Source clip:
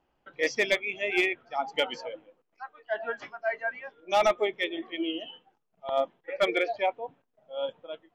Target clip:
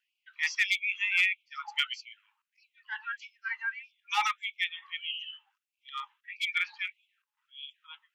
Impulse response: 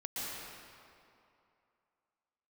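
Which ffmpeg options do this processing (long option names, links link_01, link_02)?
-af "equalizer=frequency=2700:width_type=o:width=0.27:gain=5.5,bandreject=frequency=212.7:width_type=h:width=4,bandreject=frequency=425.4:width_type=h:width=4,bandreject=frequency=638.1:width_type=h:width=4,bandreject=frequency=850.8:width_type=h:width=4,bandreject=frequency=1063.5:width_type=h:width=4,afftfilt=real='re*gte(b*sr/1024,790*pow(2200/790,0.5+0.5*sin(2*PI*1.6*pts/sr)))':imag='im*gte(b*sr/1024,790*pow(2200/790,0.5+0.5*sin(2*PI*1.6*pts/sr)))':win_size=1024:overlap=0.75"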